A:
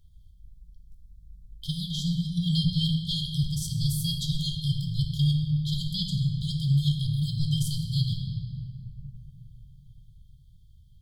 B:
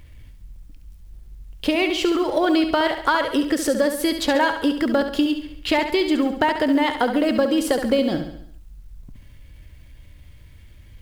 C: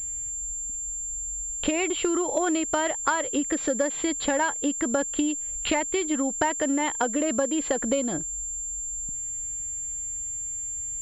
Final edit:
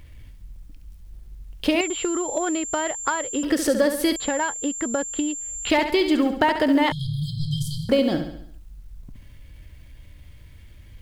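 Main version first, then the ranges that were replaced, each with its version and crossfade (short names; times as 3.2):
B
1.81–3.43 from C
4.16–5.7 from C
6.92–7.89 from A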